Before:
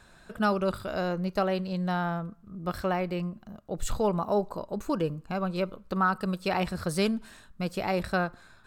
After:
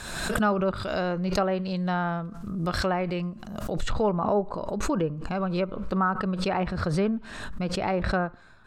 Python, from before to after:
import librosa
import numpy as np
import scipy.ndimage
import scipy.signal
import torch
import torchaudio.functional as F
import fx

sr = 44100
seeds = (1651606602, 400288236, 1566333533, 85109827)

y = fx.high_shelf(x, sr, hz=3300.0, db=fx.steps((0.0, 8.0), (4.11, -2.0), (5.7, -7.5)))
y = fx.env_lowpass_down(y, sr, base_hz=1800.0, full_db=-22.5)
y = fx.pre_swell(y, sr, db_per_s=43.0)
y = F.gain(torch.from_numpy(y), 1.5).numpy()